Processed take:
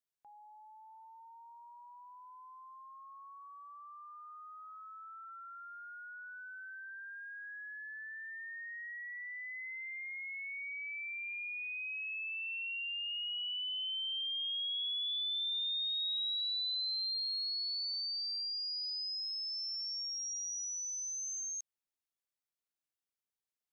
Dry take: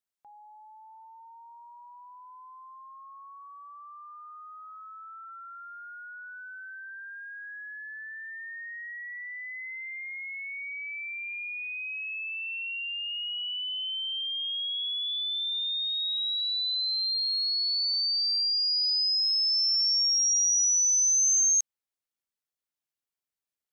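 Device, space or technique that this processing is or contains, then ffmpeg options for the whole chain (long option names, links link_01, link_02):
de-esser from a sidechain: -filter_complex "[0:a]asplit=2[link_01][link_02];[link_02]highpass=frequency=4700:width=0.5412,highpass=frequency=4700:width=1.3066,apad=whole_len=1046488[link_03];[link_01][link_03]sidechaincompress=threshold=-35dB:ratio=6:attack=1.1:release=59,volume=-5dB"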